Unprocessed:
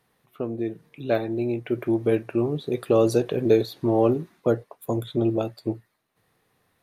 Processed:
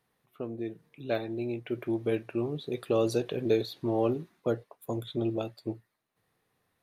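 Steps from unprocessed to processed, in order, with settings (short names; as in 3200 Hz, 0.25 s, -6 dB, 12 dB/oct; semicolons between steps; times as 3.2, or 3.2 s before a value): dynamic EQ 3400 Hz, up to +6 dB, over -47 dBFS, Q 0.98; gain -7.5 dB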